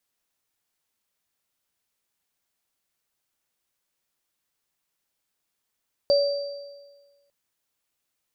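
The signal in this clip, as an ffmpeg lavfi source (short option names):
-f lavfi -i "aevalsrc='0.178*pow(10,-3*t/1.4)*sin(2*PI*567*t)+0.0631*pow(10,-3*t/1.3)*sin(2*PI*4680*t)':d=1.2:s=44100"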